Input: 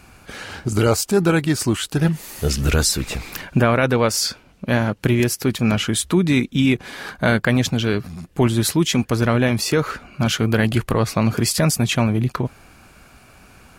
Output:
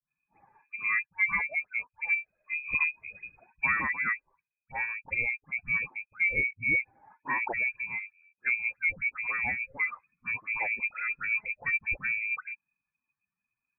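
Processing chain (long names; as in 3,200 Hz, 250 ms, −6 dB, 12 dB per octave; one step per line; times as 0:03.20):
spectral dynamics exaggerated over time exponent 2
all-pass dispersion lows, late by 76 ms, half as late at 1,200 Hz
voice inversion scrambler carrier 2,500 Hz
level −7.5 dB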